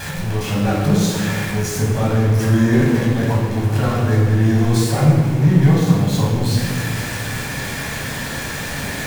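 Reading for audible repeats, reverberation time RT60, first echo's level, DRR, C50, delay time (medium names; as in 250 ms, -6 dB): no echo, 1.8 s, no echo, -4.5 dB, 0.5 dB, no echo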